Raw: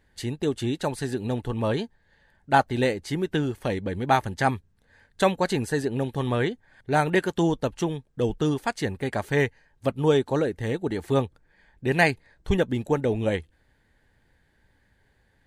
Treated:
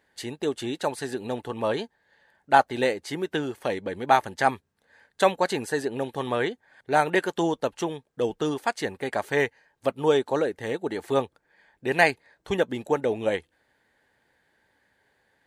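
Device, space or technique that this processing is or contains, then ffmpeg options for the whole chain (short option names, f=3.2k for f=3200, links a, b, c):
filter by subtraction: -filter_complex "[0:a]asplit=2[a][b];[b]lowpass=630,volume=-1[c];[a][c]amix=inputs=2:normalize=0"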